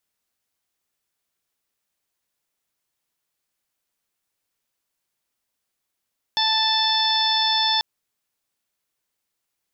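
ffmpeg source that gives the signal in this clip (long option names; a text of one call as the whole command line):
ffmpeg -f lavfi -i "aevalsrc='0.0668*sin(2*PI*881*t)+0.0335*sin(2*PI*1762*t)+0.0119*sin(2*PI*2643*t)+0.0891*sin(2*PI*3524*t)+0.0398*sin(2*PI*4405*t)+0.0596*sin(2*PI*5286*t)':duration=1.44:sample_rate=44100" out.wav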